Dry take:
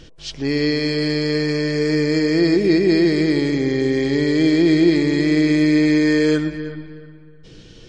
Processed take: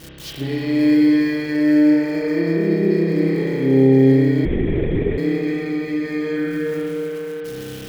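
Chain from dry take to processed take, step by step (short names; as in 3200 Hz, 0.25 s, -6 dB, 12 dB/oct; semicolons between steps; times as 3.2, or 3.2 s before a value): switching spikes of -23.5 dBFS; HPF 63 Hz; high shelf 2600 Hz -11.5 dB; compressor 6:1, threshold -25 dBFS, peak gain reduction 13.5 dB; spring tank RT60 2.9 s, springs 30 ms, chirp 75 ms, DRR -6.5 dB; 4.45–5.18 LPC vocoder at 8 kHz whisper; gain +2 dB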